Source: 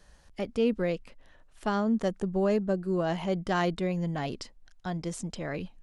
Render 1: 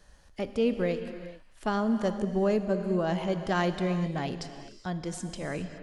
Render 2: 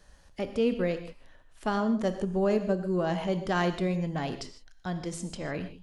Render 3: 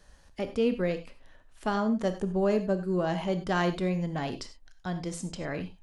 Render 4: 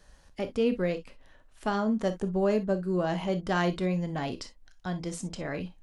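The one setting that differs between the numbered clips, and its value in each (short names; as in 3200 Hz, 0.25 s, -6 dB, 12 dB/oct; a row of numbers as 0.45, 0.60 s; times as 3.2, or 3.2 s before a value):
non-linear reverb, gate: 450, 180, 120, 80 ms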